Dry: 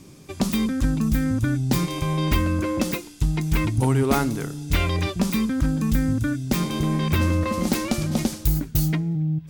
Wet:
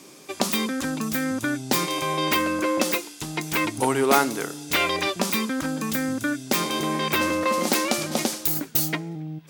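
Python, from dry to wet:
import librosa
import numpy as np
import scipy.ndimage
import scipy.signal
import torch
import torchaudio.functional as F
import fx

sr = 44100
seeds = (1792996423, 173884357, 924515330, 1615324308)

y = scipy.signal.sosfilt(scipy.signal.butter(2, 410.0, 'highpass', fs=sr, output='sos'), x)
y = y * 10.0 ** (5.5 / 20.0)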